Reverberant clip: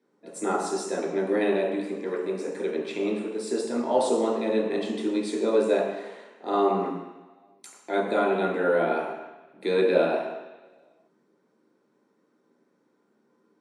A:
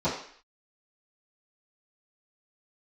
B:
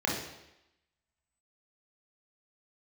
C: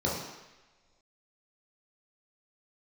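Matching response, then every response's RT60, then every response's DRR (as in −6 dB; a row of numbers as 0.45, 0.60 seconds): C; 0.55 s, 0.90 s, non-exponential decay; −15.5, −3.0, −5.5 decibels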